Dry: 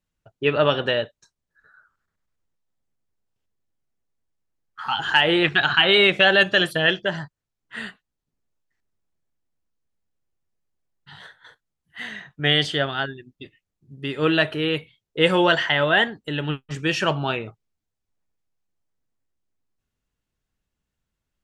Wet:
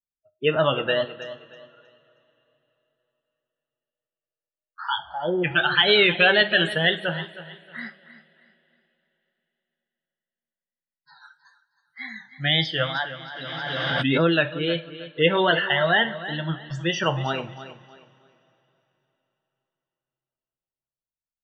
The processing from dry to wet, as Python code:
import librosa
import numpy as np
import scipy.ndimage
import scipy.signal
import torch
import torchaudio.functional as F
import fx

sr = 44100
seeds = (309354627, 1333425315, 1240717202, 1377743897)

y = fx.noise_reduce_blind(x, sr, reduce_db=23)
y = fx.bessel_lowpass(y, sr, hz=610.0, order=8, at=(4.98, 5.44), fade=0.02)
y = fx.wow_flutter(y, sr, seeds[0], rate_hz=2.1, depth_cents=120.0)
y = fx.spec_topn(y, sr, count=64)
y = fx.echo_feedback(y, sr, ms=315, feedback_pct=29, wet_db=-14.0)
y = fx.rev_double_slope(y, sr, seeds[1], early_s=0.34, late_s=3.6, knee_db=-22, drr_db=9.5)
y = fx.pre_swell(y, sr, db_per_s=21.0, at=(12.94, 14.29), fade=0.02)
y = y * 10.0 ** (-1.5 / 20.0)